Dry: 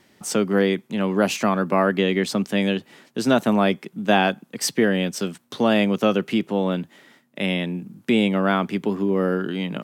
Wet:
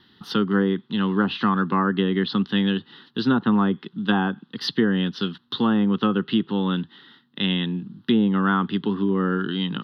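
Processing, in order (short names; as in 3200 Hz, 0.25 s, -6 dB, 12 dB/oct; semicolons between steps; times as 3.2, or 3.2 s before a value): resonant high shelf 5100 Hz -12 dB, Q 3; treble ducked by the level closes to 1100 Hz, closed at -13 dBFS; fixed phaser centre 2300 Hz, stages 6; gain +2.5 dB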